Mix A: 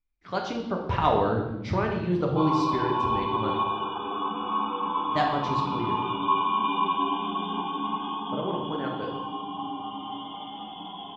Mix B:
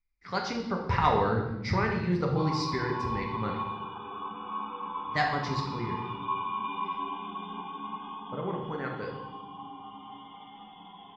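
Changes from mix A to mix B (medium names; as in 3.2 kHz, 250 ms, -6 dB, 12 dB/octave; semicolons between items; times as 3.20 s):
background -7.5 dB; master: add graphic EQ with 31 bands 315 Hz -9 dB, 630 Hz -9 dB, 2 kHz +9 dB, 3.15 kHz -8 dB, 5 kHz +10 dB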